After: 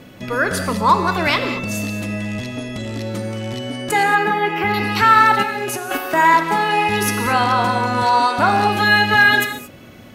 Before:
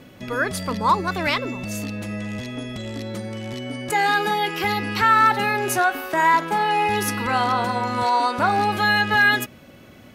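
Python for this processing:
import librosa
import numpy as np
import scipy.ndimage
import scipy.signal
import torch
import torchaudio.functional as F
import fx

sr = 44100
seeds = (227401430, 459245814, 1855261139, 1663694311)

y = fx.band_shelf(x, sr, hz=6700.0, db=-14.0, octaves=2.3, at=(4.03, 4.74))
y = fx.over_compress(y, sr, threshold_db=-29.0, ratio=-1.0, at=(5.42, 5.96), fade=0.02)
y = fx.rev_gated(y, sr, seeds[0], gate_ms=250, shape='flat', drr_db=6.5)
y = y * 10.0 ** (4.0 / 20.0)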